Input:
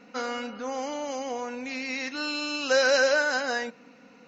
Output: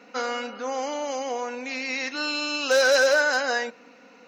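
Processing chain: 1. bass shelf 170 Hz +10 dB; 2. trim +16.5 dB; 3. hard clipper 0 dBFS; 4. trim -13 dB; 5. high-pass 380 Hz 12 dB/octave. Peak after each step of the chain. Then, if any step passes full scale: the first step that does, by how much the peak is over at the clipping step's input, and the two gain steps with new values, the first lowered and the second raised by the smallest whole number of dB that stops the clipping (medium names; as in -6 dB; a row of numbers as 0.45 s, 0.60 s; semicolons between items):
-10.0 dBFS, +6.5 dBFS, 0.0 dBFS, -13.0 dBFS, -10.0 dBFS; step 2, 6.5 dB; step 2 +9.5 dB, step 4 -6 dB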